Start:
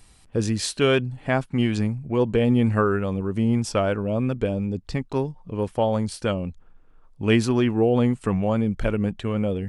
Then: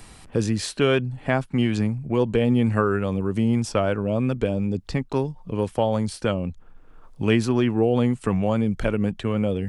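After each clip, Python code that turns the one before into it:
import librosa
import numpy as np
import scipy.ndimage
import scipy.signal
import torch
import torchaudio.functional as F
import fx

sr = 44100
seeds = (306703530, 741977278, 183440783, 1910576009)

y = fx.band_squash(x, sr, depth_pct=40)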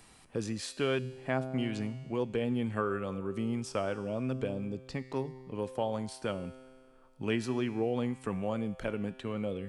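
y = fx.low_shelf(x, sr, hz=110.0, db=-9.5)
y = fx.comb_fb(y, sr, f0_hz=130.0, decay_s=1.9, harmonics='all', damping=0.0, mix_pct=70)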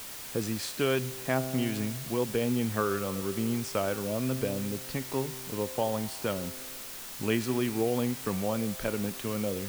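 y = fx.dmg_noise_colour(x, sr, seeds[0], colour='white', level_db=-45.0)
y = y * 10.0 ** (3.0 / 20.0)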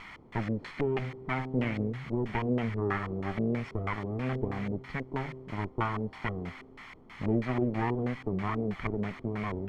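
y = fx.lower_of_two(x, sr, delay_ms=0.92)
y = fx.filter_lfo_lowpass(y, sr, shape='square', hz=3.1, low_hz=430.0, high_hz=2000.0, q=2.5)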